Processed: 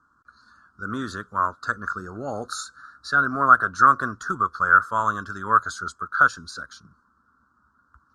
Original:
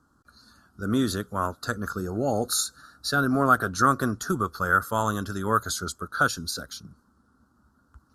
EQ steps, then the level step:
low-pass filter 8,300 Hz 24 dB per octave
flat-topped bell 1,300 Hz +13 dB 1 octave
dynamic equaliser 640 Hz, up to +4 dB, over −27 dBFS, Q 1.9
−7.0 dB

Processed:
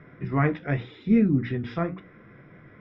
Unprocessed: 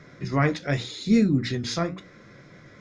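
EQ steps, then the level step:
Savitzky-Golay smoothing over 25 samples
high-frequency loss of the air 230 metres
notch filter 560 Hz, Q 12
0.0 dB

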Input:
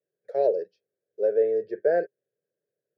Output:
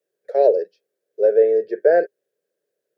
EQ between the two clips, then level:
high-pass filter 280 Hz 12 dB per octave
+8.0 dB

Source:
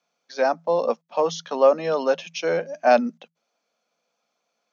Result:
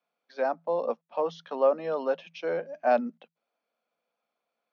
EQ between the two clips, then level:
dynamic equaliser 2,400 Hz, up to −3 dB, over −36 dBFS, Q 1.2
band-pass filter 180–4,100 Hz
high-frequency loss of the air 130 metres
−6.0 dB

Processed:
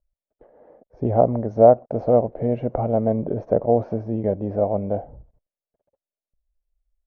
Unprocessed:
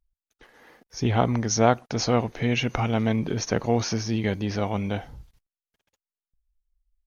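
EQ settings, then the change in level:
low-pass with resonance 600 Hz, resonance Q 4.9
−1.0 dB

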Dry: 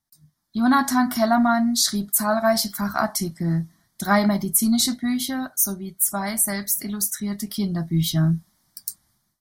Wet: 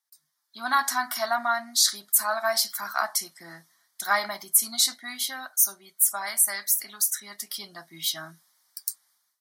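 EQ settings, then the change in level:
high-pass filter 1,000 Hz 12 dB per octave
0.0 dB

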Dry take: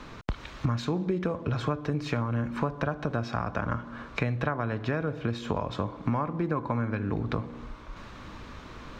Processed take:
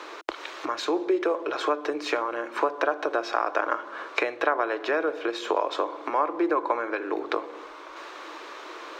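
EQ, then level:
elliptic high-pass filter 330 Hz, stop band 40 dB
+7.5 dB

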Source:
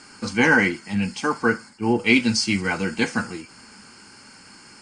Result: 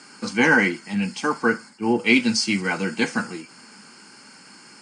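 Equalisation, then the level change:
high-pass filter 140 Hz 24 dB per octave
0.0 dB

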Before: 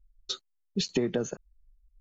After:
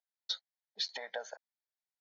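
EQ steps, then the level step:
high-pass filter 630 Hz 24 dB per octave
high-frequency loss of the air 110 metres
phaser with its sweep stopped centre 1,800 Hz, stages 8
+2.5 dB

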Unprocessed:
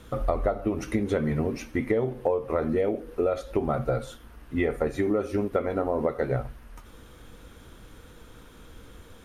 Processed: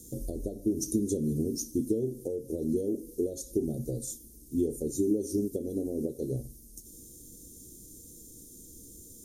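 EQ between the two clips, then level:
elliptic band-stop filter 350–6,500 Hz, stop band 60 dB
tilt shelving filter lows −7 dB, about 1,100 Hz
low-shelf EQ 110 Hz −11 dB
+7.5 dB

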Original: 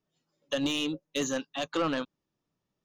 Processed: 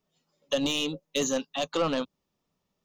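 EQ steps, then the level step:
dynamic equaliser 1,700 Hz, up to −5 dB, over −44 dBFS, Q 0.76
thirty-one-band graphic EQ 125 Hz −10 dB, 315 Hz −8 dB, 1,600 Hz −5 dB, 10,000 Hz −4 dB
+5.5 dB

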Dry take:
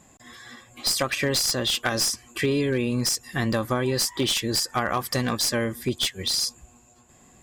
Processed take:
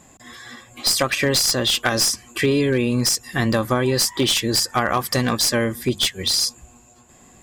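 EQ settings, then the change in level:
mains-hum notches 50/100/150/200 Hz
+5.0 dB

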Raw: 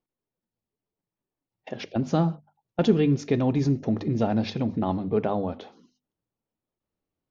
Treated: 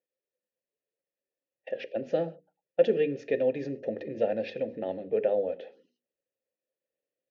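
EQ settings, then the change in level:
formant filter e
mains-hum notches 60/120/180/240/300/360/420/480 Hz
+8.5 dB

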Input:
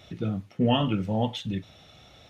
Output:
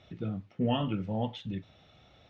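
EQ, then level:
high-frequency loss of the air 150 metres
−5.5 dB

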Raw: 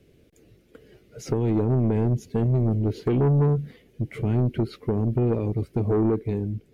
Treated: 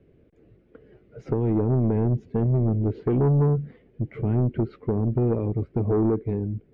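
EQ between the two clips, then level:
low-pass filter 1,600 Hz 12 dB per octave
0.0 dB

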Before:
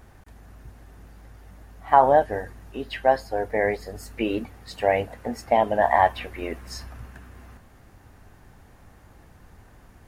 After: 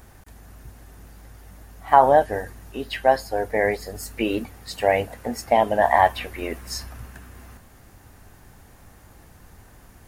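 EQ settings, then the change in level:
high-shelf EQ 5,300 Hz +10 dB
+1.5 dB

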